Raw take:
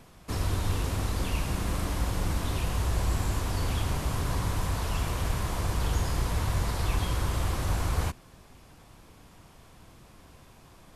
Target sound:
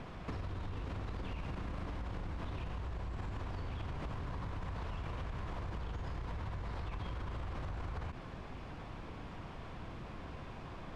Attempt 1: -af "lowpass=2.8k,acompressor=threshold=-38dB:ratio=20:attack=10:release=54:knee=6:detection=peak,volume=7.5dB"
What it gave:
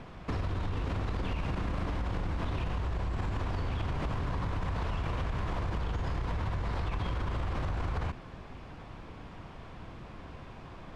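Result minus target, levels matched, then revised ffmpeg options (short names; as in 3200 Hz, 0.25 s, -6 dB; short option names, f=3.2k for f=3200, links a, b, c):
compressor: peak gain reduction -8 dB
-af "lowpass=2.8k,acompressor=threshold=-46.5dB:ratio=20:attack=10:release=54:knee=6:detection=peak,volume=7.5dB"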